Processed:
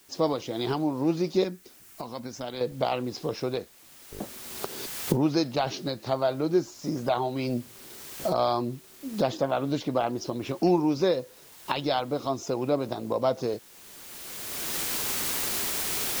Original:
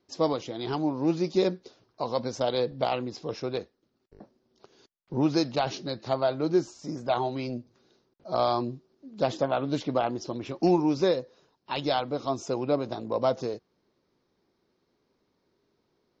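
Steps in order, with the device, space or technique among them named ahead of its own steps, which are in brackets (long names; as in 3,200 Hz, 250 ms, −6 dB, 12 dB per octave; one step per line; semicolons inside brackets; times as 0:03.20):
cheap recorder with automatic gain (white noise bed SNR 29 dB; camcorder AGC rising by 20 dB per second)
0:01.44–0:02.61: graphic EQ with 10 bands 125 Hz −6 dB, 500 Hz −11 dB, 1,000 Hz −5 dB, 4,000 Hz −7 dB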